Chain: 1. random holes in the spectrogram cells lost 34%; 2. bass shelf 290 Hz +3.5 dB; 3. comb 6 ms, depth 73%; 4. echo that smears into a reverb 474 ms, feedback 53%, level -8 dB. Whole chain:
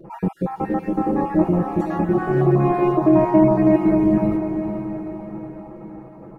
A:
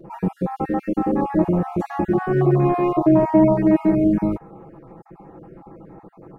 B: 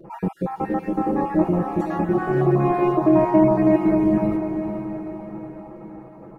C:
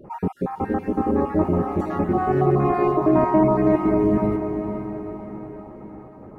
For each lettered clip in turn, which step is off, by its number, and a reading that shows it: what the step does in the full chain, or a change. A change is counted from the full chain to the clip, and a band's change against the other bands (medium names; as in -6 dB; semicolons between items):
4, echo-to-direct -6.5 dB to none; 2, 125 Hz band -2.0 dB; 3, 1 kHz band +3.0 dB